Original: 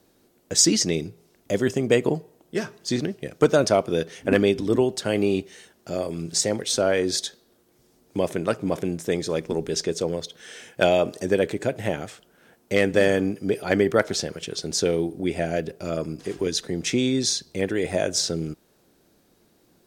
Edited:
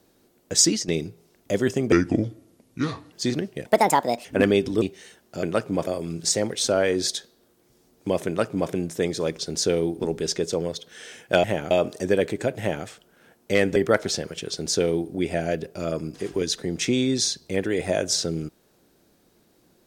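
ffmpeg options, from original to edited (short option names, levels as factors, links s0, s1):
-filter_complex "[0:a]asplit=14[s0][s1][s2][s3][s4][s5][s6][s7][s8][s9][s10][s11][s12][s13];[s0]atrim=end=0.88,asetpts=PTS-STARTPTS,afade=t=out:st=0.63:d=0.25:silence=0.223872[s14];[s1]atrim=start=0.88:end=1.924,asetpts=PTS-STARTPTS,afade=t=in:d=0.004:c=hsin:silence=0.223872[s15];[s2]atrim=start=1.92:end=2.79,asetpts=PTS-STARTPTS,asetrate=31752,aresample=44100[s16];[s3]atrim=start=2.786:end=3.324[s17];[s4]atrim=start=3.32:end=4.17,asetpts=PTS-STARTPTS,asetrate=63504,aresample=44100,atrim=end_sample=26031,asetpts=PTS-STARTPTS[s18];[s5]atrim=start=4.166:end=4.742[s19];[s6]atrim=start=5.348:end=5.962[s20];[s7]atrim=start=8.358:end=8.802[s21];[s8]atrim=start=5.958:end=9.482[s22];[s9]atrim=start=14.548:end=15.162[s23];[s10]atrim=start=9.478:end=10.922[s24];[s11]atrim=start=11.798:end=12.072[s25];[s12]atrim=start=10.918:end=12.972[s26];[s13]atrim=start=13.808[s27];[s14][s15]concat=n=2:v=0:a=1[s28];[s28][s16]acrossfade=d=0.004:c1=hsin:c2=hsin[s29];[s29][s17]acrossfade=d=0.004:c1=hsin:c2=hsin[s30];[s30][s18]acrossfade=d=0.004:c1=hsin:c2=hsin[s31];[s31][s19]acrossfade=d=0.004:c1=hsin:c2=hsin[s32];[s32][s20]acrossfade=d=0.004:c1=hsin:c2=hsin[s33];[s33][s21]acrossfade=d=0.004:c1=hsin:c2=hsin[s34];[s34][s22]acrossfade=d=0.004:c1=hsin:c2=hsin[s35];[s35][s23]acrossfade=d=0.004:c1=hsin:c2=hsin[s36];[s36][s24]acrossfade=d=0.004:c1=hsin:c2=hsin[s37];[s37][s25]acrossfade=d=0.004:c1=hsin:c2=hsin[s38];[s38][s26]acrossfade=d=0.004:c1=hsin:c2=hsin[s39];[s39][s27]acrossfade=d=0.004:c1=hsin:c2=hsin"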